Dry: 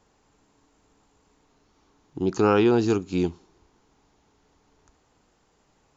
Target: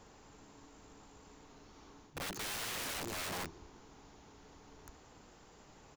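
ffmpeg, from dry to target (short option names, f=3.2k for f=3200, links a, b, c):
-filter_complex "[0:a]asplit=2[a][b];[b]adelay=180.8,volume=-20dB,highshelf=f=4k:g=-4.07[c];[a][c]amix=inputs=2:normalize=0,areverse,acompressor=threshold=-32dB:ratio=8,areverse,aeval=exprs='(mod(119*val(0)+1,2)-1)/119':c=same,volume=6dB"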